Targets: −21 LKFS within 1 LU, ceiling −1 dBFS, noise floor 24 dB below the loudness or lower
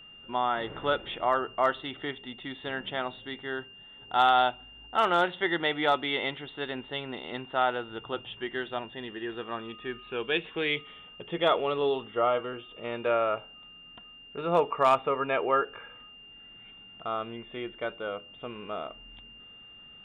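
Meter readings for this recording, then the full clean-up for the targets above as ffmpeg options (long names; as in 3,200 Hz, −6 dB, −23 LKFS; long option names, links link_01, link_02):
interfering tone 2,800 Hz; level of the tone −48 dBFS; integrated loudness −29.5 LKFS; sample peak −12.5 dBFS; target loudness −21.0 LKFS
→ -af "bandreject=frequency=2800:width=30"
-af "volume=8.5dB"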